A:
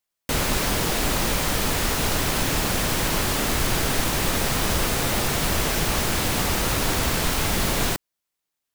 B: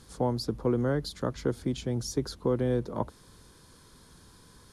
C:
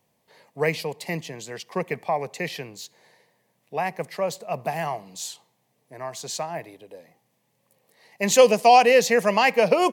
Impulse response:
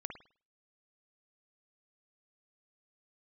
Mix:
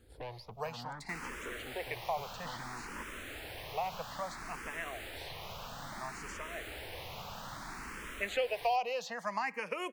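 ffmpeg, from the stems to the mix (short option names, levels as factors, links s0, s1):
-filter_complex "[0:a]adelay=800,volume=0.2[s0];[1:a]highshelf=f=2700:g=-11.5,aeval=exprs='(tanh(39.8*val(0)+0.75)-tanh(0.75))/39.8':c=same,volume=1.06[s1];[2:a]volume=0.631[s2];[s0][s1][s2]amix=inputs=3:normalize=0,acrossover=split=650|3400[s3][s4][s5];[s3]acompressor=threshold=0.00562:ratio=4[s6];[s4]acompressor=threshold=0.0282:ratio=4[s7];[s5]acompressor=threshold=0.00224:ratio=4[s8];[s6][s7][s8]amix=inputs=3:normalize=0,asplit=2[s9][s10];[s10]afreqshift=0.6[s11];[s9][s11]amix=inputs=2:normalize=1"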